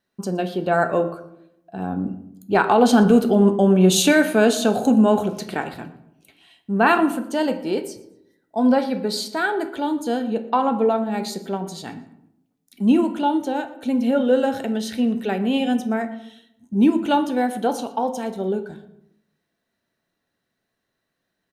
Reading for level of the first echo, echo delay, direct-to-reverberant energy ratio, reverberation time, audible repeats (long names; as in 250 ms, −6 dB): −21.0 dB, 118 ms, 8.0 dB, 0.80 s, 2